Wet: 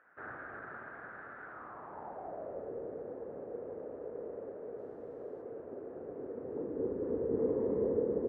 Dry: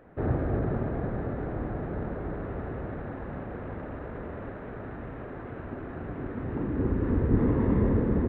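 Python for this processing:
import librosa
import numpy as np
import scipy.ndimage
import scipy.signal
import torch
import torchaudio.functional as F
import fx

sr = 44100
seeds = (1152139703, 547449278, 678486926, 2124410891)

y = fx.delta_mod(x, sr, bps=64000, step_db=-48.5, at=(4.78, 5.42))
y = fx.filter_sweep_bandpass(y, sr, from_hz=1500.0, to_hz=470.0, start_s=1.44, end_s=2.75, q=4.5)
y = F.gain(torch.from_numpy(y), 3.0).numpy()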